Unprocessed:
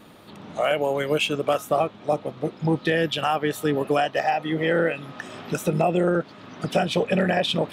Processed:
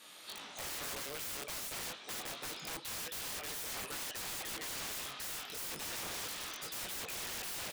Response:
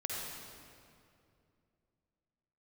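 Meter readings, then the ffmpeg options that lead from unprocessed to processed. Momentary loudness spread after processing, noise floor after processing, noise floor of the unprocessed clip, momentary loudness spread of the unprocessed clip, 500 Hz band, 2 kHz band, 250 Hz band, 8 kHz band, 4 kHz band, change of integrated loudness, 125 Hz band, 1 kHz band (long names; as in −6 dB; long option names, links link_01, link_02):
2 LU, −52 dBFS, −46 dBFS, 9 LU, −28.0 dB, −15.0 dB, −27.5 dB, +2.0 dB, −10.0 dB, −16.0 dB, −27.5 dB, −21.5 dB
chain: -filter_complex "[0:a]asubboost=boost=2.5:cutoff=53,dynaudnorm=framelen=230:gausssize=3:maxgain=15dB,aderivative,asplit=2[link_01][link_02];[link_02]aecho=0:1:36|52:0.168|0.133[link_03];[link_01][link_03]amix=inputs=2:normalize=0,acrusher=bits=6:mode=log:mix=0:aa=0.000001,areverse,acompressor=threshold=-41dB:ratio=5,areverse,asplit=2[link_04][link_05];[link_05]adelay=22,volume=-8dB[link_06];[link_04][link_06]amix=inputs=2:normalize=0,flanger=delay=18:depth=4.5:speed=2.4,lowpass=9000,aeval=exprs='(mod(211*val(0)+1,2)-1)/211':channel_layout=same,volume=10dB"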